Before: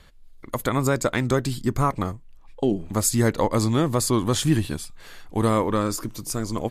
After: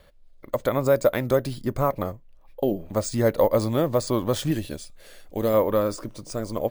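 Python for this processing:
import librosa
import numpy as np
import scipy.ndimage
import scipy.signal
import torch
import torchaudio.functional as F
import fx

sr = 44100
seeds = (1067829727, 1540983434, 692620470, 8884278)

y = fx.peak_eq(x, sr, hz=570.0, db=13.0, octaves=0.54)
y = np.repeat(scipy.signal.resample_poly(y, 1, 3), 3)[:len(y)]
y = fx.graphic_eq(y, sr, hz=(125, 1000, 8000), db=(-5, -8, 7), at=(4.51, 5.54))
y = y * 10.0 ** (-4.5 / 20.0)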